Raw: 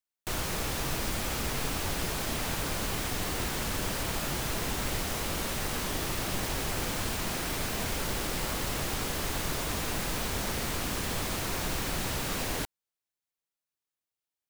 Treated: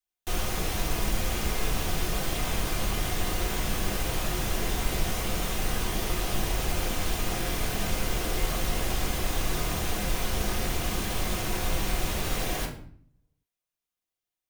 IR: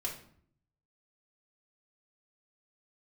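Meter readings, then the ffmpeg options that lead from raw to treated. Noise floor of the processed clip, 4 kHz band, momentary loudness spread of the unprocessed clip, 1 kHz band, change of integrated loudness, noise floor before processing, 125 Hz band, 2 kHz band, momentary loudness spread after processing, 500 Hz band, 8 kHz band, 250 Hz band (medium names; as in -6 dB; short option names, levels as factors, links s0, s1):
under -85 dBFS, +1.0 dB, 0 LU, +1.5 dB, +2.0 dB, under -85 dBFS, +3.5 dB, +1.0 dB, 1 LU, +2.5 dB, +0.5 dB, +2.0 dB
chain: -filter_complex "[1:a]atrim=start_sample=2205[s0];[0:a][s0]afir=irnorm=-1:irlink=0"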